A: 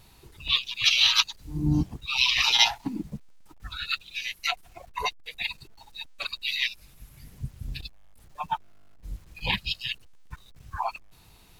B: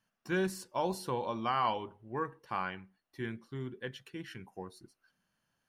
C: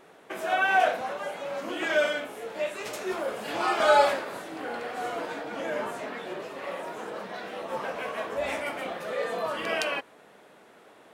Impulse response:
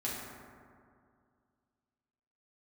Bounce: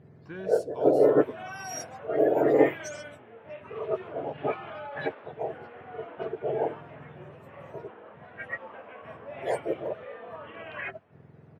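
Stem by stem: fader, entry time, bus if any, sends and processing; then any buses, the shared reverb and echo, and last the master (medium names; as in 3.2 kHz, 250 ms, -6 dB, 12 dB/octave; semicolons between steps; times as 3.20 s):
-2.0 dB, 0.00 s, no bus, no send, spectrum inverted on a logarithmic axis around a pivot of 1.3 kHz
+2.5 dB, 0.00 s, bus A, no send, auto duck -23 dB, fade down 1.85 s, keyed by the first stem
-11.0 dB, 0.90 s, bus A, no send, elliptic band-pass 200–3100 Hz
bus A: 0.0 dB, peak limiter -32 dBFS, peak gain reduction 12.5 dB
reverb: none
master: level-controlled noise filter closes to 2.1 kHz, open at -19.5 dBFS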